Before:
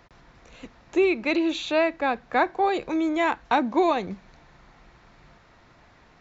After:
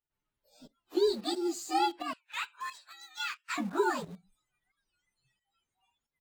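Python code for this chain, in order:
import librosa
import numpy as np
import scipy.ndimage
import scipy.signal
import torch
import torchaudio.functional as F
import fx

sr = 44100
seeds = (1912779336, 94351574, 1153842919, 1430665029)

p1 = fx.partial_stretch(x, sr, pct=125)
p2 = fx.noise_reduce_blind(p1, sr, reduce_db=25)
p3 = fx.highpass(p2, sr, hz=1400.0, slope=24, at=(2.14, 3.59))
p4 = fx.quant_dither(p3, sr, seeds[0], bits=6, dither='none')
p5 = p3 + (p4 * 10.0 ** (-11.5 / 20.0))
p6 = fx.volume_shaper(p5, sr, bpm=89, per_beat=1, depth_db=-11, release_ms=237.0, shape='fast start')
p7 = fx.record_warp(p6, sr, rpm=45.0, depth_cents=160.0)
y = p7 * 10.0 ** (-6.0 / 20.0)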